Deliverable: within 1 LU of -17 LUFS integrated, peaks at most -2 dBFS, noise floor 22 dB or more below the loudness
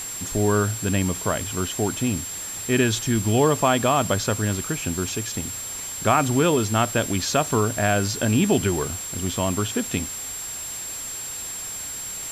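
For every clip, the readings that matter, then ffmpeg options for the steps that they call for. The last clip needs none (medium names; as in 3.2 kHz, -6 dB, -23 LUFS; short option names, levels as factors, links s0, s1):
steady tone 7.5 kHz; tone level -31 dBFS; noise floor -33 dBFS; noise floor target -46 dBFS; loudness -23.5 LUFS; peak level -5.5 dBFS; loudness target -17.0 LUFS
-> -af "bandreject=f=7500:w=30"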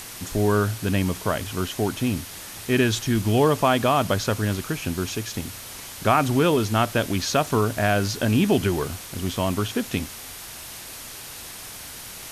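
steady tone not found; noise floor -39 dBFS; noise floor target -45 dBFS
-> -af "afftdn=nr=6:nf=-39"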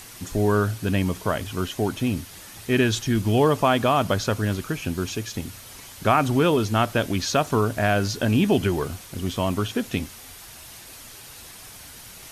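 noise floor -43 dBFS; noise floor target -46 dBFS
-> -af "afftdn=nr=6:nf=-43"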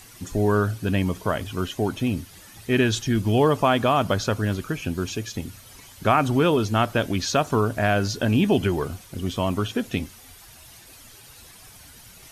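noise floor -48 dBFS; loudness -23.5 LUFS; peak level -6.5 dBFS; loudness target -17.0 LUFS
-> -af "volume=2.11,alimiter=limit=0.794:level=0:latency=1"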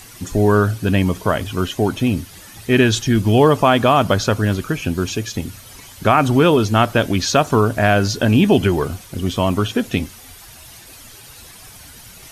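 loudness -17.0 LUFS; peak level -2.0 dBFS; noise floor -41 dBFS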